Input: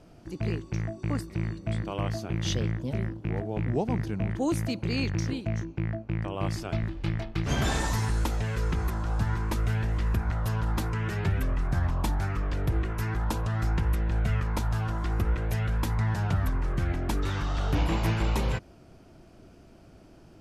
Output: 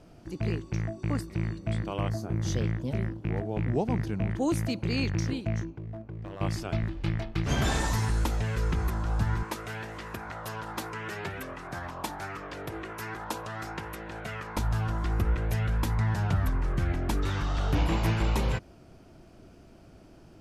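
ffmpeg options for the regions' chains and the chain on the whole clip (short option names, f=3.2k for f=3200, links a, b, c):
-filter_complex "[0:a]asettb=1/sr,asplit=3[a][b][c];[a]atrim=end=2.094[d];[b]atrim=start=2.09:end=2.54,asetpts=PTS-STARTPTS,afade=t=in:d=0.004:c=qsin,afade=t=out:st=0.446:d=0.004:c=qsin,equalizer=f=2.9k:w=1.2:g=-14,asplit=2[e][f];[f]adelay=28,volume=-12dB[g];[e][g]amix=inputs=2:normalize=0,atrim=end_sample=19845[h];[c]atrim=start=2.536[i];[d][h]acrossfade=d=0.004:c1=hsin:c2=qsin[j];[j][i]acrossfade=d=0.004:c1=qsin:c2=hsin,asettb=1/sr,asplit=3[k][l][m];[k]atrim=end=5.704[n];[l]atrim=start=5.7:end=6.41,asetpts=PTS-STARTPTS,afade=t=in:d=0.004:c=qsin,afade=t=out:st=0.706:d=0.004:c=qsin,highshelf=f=3.6k:g=-10,acompressor=threshold=-34dB:ratio=2.5:attack=3.2:release=140:knee=1:detection=peak,asoftclip=type=hard:threshold=-33.5dB[o];[m]atrim=start=6.406[p];[n][o]acrossfade=d=0.004:c1=hsin:c2=qsin[q];[q][p]acrossfade=d=0.004:c1=qsin:c2=hsin,asettb=1/sr,asplit=3[r][s][t];[r]atrim=end=9.434[u];[s]atrim=start=9.43:end=14.57,asetpts=PTS-STARTPTS,afade=t=in:d=0.004:c=qsin,afade=t=out:st=5.136:d=0.004:c=qsin,highpass=94,bass=f=250:g=-13,treble=f=4k:g=0[v];[t]atrim=start=14.566[w];[u][v]acrossfade=d=0.004:c1=hsin:c2=qsin[x];[x][w]acrossfade=d=0.004:c1=qsin:c2=hsin"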